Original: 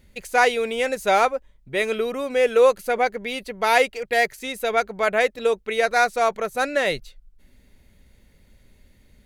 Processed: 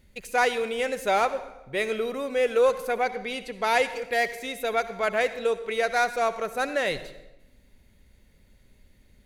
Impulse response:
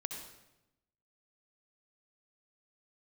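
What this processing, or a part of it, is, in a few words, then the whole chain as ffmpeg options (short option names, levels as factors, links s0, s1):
saturated reverb return: -filter_complex "[0:a]asplit=2[s0][s1];[1:a]atrim=start_sample=2205[s2];[s1][s2]afir=irnorm=-1:irlink=0,asoftclip=type=tanh:threshold=0.112,volume=0.631[s3];[s0][s3]amix=inputs=2:normalize=0,asettb=1/sr,asplit=3[s4][s5][s6];[s4]atrim=end=3.074[s7];[s5]atrim=start=3.07:end=3.9,asetpts=PTS-STARTPTS,afade=t=in:d=0.004:c=qsin,afade=t=out:st=0.826:d=0.004:c=qsin,lowpass=12000[s8];[s6]atrim=start=3.896[s9];[s7][s8]acrossfade=d=0.004:c1=hsin:c2=qsin[s10];[s10][s9]acrossfade=d=0.004:c1=qsin:c2=hsin,volume=0.447"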